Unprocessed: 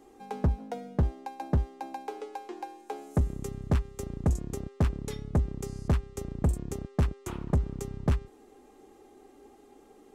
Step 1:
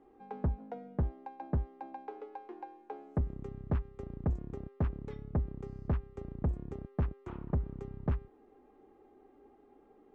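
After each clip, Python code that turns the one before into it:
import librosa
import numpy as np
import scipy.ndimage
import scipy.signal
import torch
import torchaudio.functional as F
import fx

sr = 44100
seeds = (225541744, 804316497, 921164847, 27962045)

y = scipy.signal.sosfilt(scipy.signal.butter(2, 1800.0, 'lowpass', fs=sr, output='sos'), x)
y = y * librosa.db_to_amplitude(-6.0)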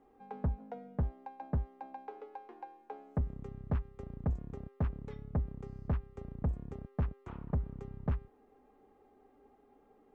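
y = fx.peak_eq(x, sr, hz=340.0, db=-11.0, octaves=0.26)
y = y * librosa.db_to_amplitude(-1.0)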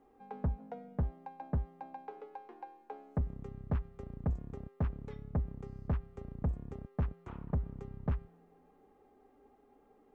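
y = fx.comb_fb(x, sr, f0_hz=170.0, decay_s=1.9, harmonics='all', damping=0.0, mix_pct=40)
y = y * librosa.db_to_amplitude(4.0)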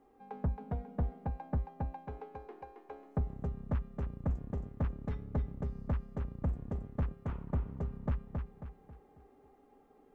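y = fx.echo_feedback(x, sr, ms=271, feedback_pct=39, wet_db=-4.5)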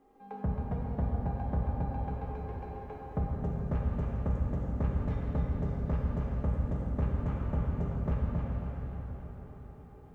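y = fx.rev_plate(x, sr, seeds[0], rt60_s=4.8, hf_ratio=0.85, predelay_ms=0, drr_db=-3.5)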